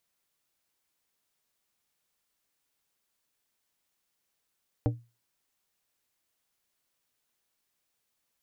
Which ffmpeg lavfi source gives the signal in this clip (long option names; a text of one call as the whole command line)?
ffmpeg -f lavfi -i "aevalsrc='0.0944*pow(10,-3*t/0.29)*sin(2*PI*118*t)+0.0631*pow(10,-3*t/0.153)*sin(2*PI*295*t)+0.0422*pow(10,-3*t/0.11)*sin(2*PI*472*t)+0.0282*pow(10,-3*t/0.094)*sin(2*PI*590*t)+0.0188*pow(10,-3*t/0.078)*sin(2*PI*767*t)':duration=0.89:sample_rate=44100" out.wav